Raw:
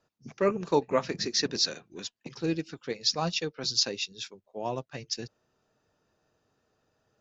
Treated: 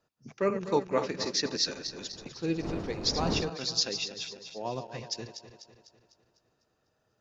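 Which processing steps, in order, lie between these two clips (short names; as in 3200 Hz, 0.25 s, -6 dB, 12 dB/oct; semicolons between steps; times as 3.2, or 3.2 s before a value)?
regenerating reverse delay 0.125 s, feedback 69%, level -9.5 dB; 1.6–3.49 wind noise 410 Hz -39 dBFS; gain -2.5 dB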